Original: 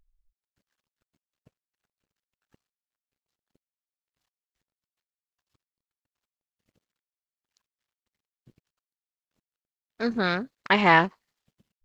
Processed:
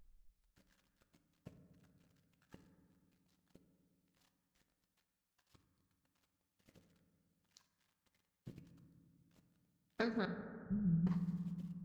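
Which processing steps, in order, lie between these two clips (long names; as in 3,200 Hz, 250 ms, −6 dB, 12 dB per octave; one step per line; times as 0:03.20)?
0:10.25–0:11.07: inverse Chebyshev low-pass filter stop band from 810 Hz, stop band 80 dB
downward compressor 20 to 1, threshold −40 dBFS, peak gain reduction 19.5 dB
convolution reverb RT60 2.2 s, pre-delay 3 ms, DRR 6.5 dB
level +5 dB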